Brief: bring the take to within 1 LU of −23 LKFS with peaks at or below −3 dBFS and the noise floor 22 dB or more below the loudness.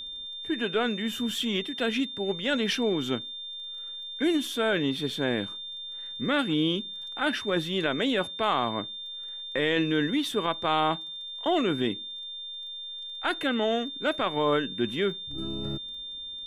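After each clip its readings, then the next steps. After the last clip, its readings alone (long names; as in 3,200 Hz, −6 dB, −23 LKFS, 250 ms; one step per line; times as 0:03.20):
crackle rate 21 per second; interfering tone 3,600 Hz; level of the tone −36 dBFS; integrated loudness −28.5 LKFS; sample peak −14.0 dBFS; target loudness −23.0 LKFS
→ click removal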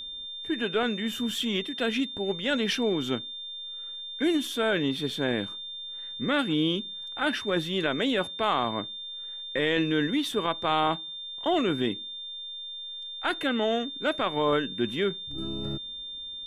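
crackle rate 0 per second; interfering tone 3,600 Hz; level of the tone −36 dBFS
→ notch filter 3,600 Hz, Q 30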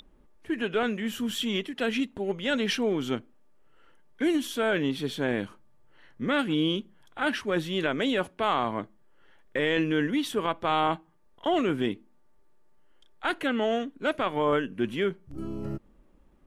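interfering tone none found; integrated loudness −28.5 LKFS; sample peak −14.5 dBFS; target loudness −23.0 LKFS
→ level +5.5 dB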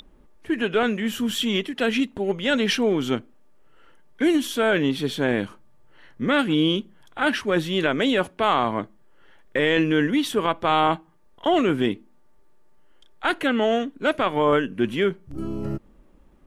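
integrated loudness −23.0 LKFS; sample peak −9.0 dBFS; background noise floor −54 dBFS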